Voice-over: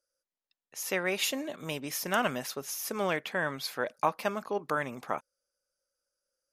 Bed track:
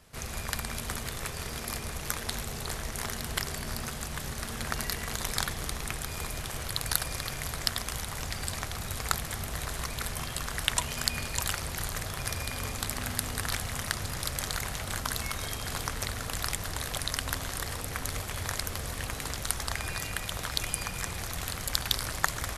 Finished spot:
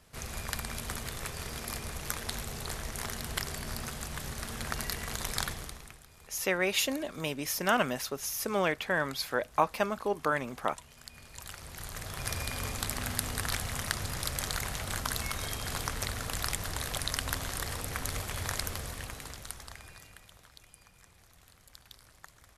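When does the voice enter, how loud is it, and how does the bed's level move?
5.55 s, +1.5 dB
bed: 0:05.50 −2.5 dB
0:06.06 −20.5 dB
0:11.02 −20.5 dB
0:12.32 −1 dB
0:18.66 −1 dB
0:20.60 −24.5 dB

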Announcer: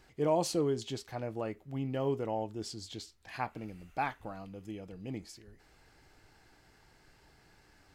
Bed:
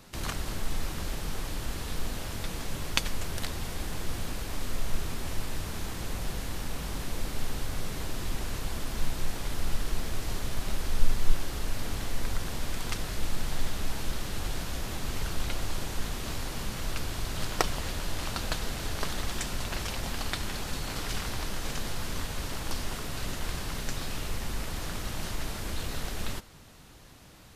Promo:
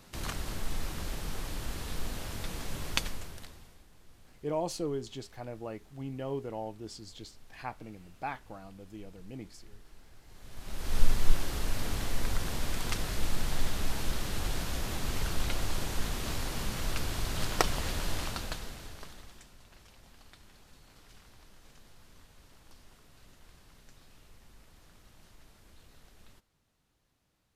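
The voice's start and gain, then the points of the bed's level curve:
4.25 s, −3.5 dB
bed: 0:03.01 −3 dB
0:03.86 −25 dB
0:10.24 −25 dB
0:10.97 0 dB
0:18.14 0 dB
0:19.55 −23.5 dB

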